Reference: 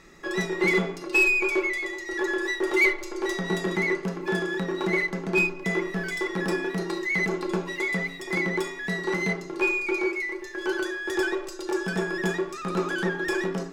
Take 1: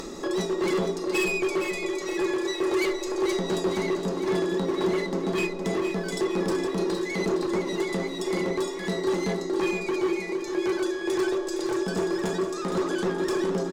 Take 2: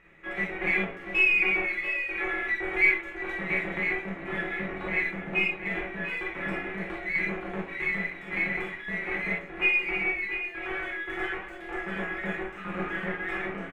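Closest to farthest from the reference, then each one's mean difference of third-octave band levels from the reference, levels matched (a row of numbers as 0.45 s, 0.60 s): 1, 2; 4.5 dB, 7.5 dB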